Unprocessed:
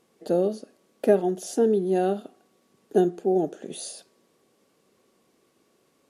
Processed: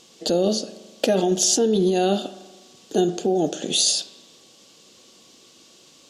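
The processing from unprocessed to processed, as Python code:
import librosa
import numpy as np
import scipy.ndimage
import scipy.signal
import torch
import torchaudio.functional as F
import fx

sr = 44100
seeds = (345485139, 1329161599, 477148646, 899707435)

p1 = fx.band_shelf(x, sr, hz=4600.0, db=14.0, octaves=1.7)
p2 = fx.notch(p1, sr, hz=410.0, q=12.0)
p3 = fx.over_compress(p2, sr, threshold_db=-27.0, ratio=-0.5)
p4 = p2 + (p3 * librosa.db_to_amplitude(1.0))
y = fx.rev_spring(p4, sr, rt60_s=1.3, pass_ms=(41,), chirp_ms=55, drr_db=14.0)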